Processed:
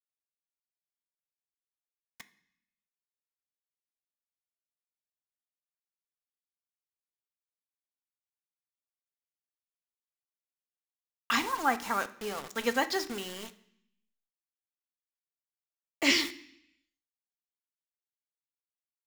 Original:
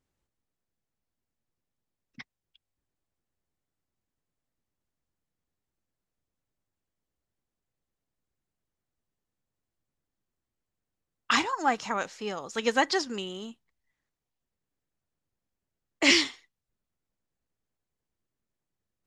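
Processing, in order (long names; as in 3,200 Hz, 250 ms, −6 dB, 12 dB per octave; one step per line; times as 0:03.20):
0:11.50–0:12.71: dynamic equaliser 1,300 Hz, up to +5 dB, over −40 dBFS, Q 1.2
bit-depth reduction 6 bits, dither none
on a send: convolution reverb RT60 0.65 s, pre-delay 3 ms, DRR 9 dB
on the sum: level −4.5 dB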